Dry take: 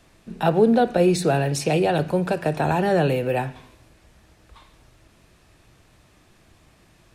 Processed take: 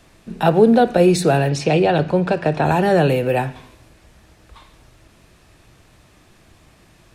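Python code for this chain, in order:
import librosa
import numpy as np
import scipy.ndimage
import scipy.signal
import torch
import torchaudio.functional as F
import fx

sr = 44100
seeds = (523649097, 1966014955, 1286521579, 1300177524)

y = fx.lowpass(x, sr, hz=5200.0, slope=12, at=(1.49, 2.66))
y = y * librosa.db_to_amplitude(4.5)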